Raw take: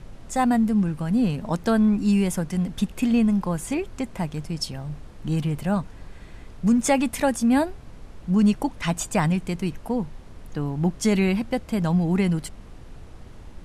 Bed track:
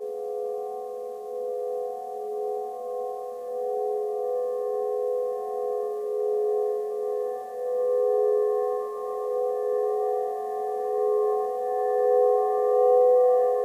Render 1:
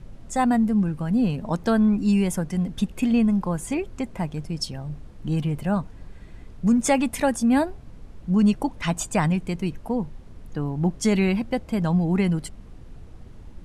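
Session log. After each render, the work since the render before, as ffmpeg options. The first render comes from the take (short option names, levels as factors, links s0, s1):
-af "afftdn=nr=6:nf=-44"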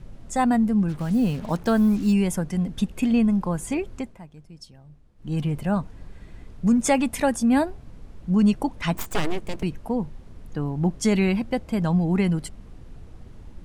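-filter_complex "[0:a]asplit=3[s0][s1][s2];[s0]afade=t=out:st=0.88:d=0.02[s3];[s1]acrusher=bits=6:mix=0:aa=0.5,afade=t=in:st=0.88:d=0.02,afade=t=out:st=2.12:d=0.02[s4];[s2]afade=t=in:st=2.12:d=0.02[s5];[s3][s4][s5]amix=inputs=3:normalize=0,asettb=1/sr,asplit=3[s6][s7][s8];[s6]atrim=end=8.954[s9];[s7]atrim=start=8.95:end=9.63,asetpts=PTS-STARTPTS,afade=t=in:d=0.004:c=qsin,afade=t=out:st=0.676:d=0.004:c=qsin,aeval=exprs='abs(val(0))':c=same[s10];[s8]atrim=start=9.626[s11];[s9][s10]acrossfade=d=0.004:c1=hsin:c2=qsin[s12];[s12][s11]acrossfade=d=0.004:c1=qsin:c2=hsin,asplit=3[s13][s14][s15];[s13]atrim=end=4.19,asetpts=PTS-STARTPTS,afade=t=out:st=3.94:d=0.25:silence=0.16788[s16];[s14]atrim=start=4.19:end=5.16,asetpts=PTS-STARTPTS,volume=0.168[s17];[s15]atrim=start=5.16,asetpts=PTS-STARTPTS,afade=t=in:d=0.25:silence=0.16788[s18];[s16][s17][s18]concat=n=3:v=0:a=1"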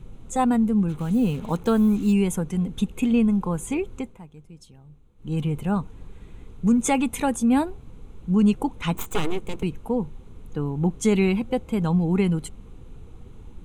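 -af "superequalizer=7b=1.41:8b=0.501:11b=0.501:14b=0.355"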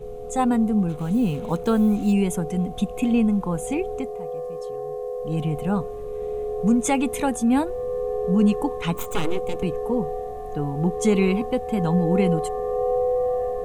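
-filter_complex "[1:a]volume=0.668[s0];[0:a][s0]amix=inputs=2:normalize=0"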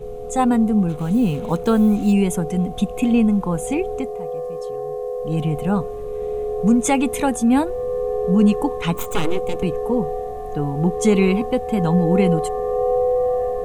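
-af "volume=1.5"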